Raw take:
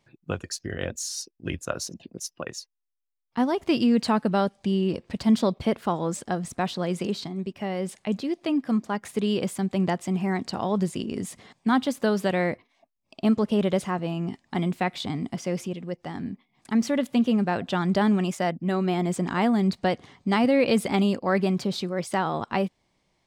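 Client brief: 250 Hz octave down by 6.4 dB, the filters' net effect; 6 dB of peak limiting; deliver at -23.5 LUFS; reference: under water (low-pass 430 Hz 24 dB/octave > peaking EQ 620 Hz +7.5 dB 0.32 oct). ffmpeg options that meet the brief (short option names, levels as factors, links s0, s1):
-af "equalizer=f=250:t=o:g=-8.5,alimiter=limit=0.133:level=0:latency=1,lowpass=f=430:w=0.5412,lowpass=f=430:w=1.3066,equalizer=f=620:t=o:w=0.32:g=7.5,volume=3.16"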